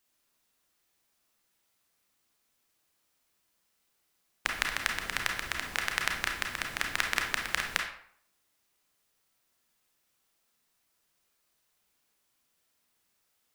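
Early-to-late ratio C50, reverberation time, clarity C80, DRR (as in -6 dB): 5.0 dB, 0.60 s, 9.5 dB, 1.5 dB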